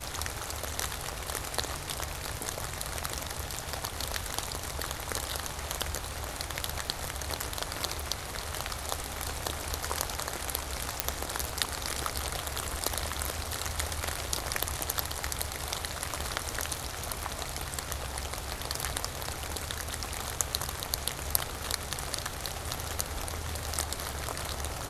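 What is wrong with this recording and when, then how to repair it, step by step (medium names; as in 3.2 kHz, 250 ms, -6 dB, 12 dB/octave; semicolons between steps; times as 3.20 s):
crackle 28 per s -39 dBFS
11.00 s: pop -3 dBFS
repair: de-click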